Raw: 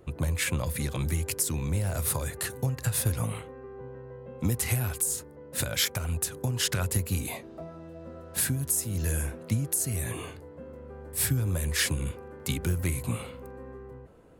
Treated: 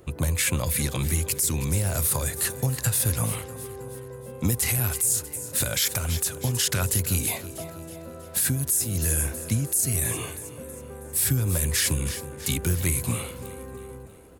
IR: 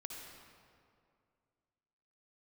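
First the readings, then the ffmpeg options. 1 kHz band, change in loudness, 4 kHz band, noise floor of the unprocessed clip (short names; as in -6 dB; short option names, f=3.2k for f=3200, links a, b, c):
+3.5 dB, +4.5 dB, +3.0 dB, -47 dBFS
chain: -af "highshelf=f=3.8k:g=9,aecho=1:1:321|642|963|1284|1605:0.141|0.0735|0.0382|0.0199|0.0103,alimiter=limit=-16.5dB:level=0:latency=1:release=11,volume=3dB"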